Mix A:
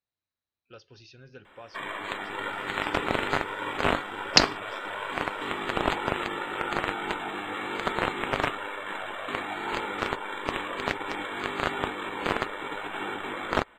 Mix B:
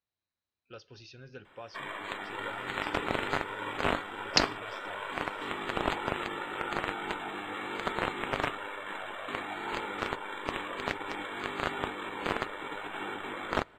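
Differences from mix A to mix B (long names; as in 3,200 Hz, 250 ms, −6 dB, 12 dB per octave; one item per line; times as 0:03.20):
first sound −5.0 dB
second sound −7.0 dB
reverb: on, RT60 2.2 s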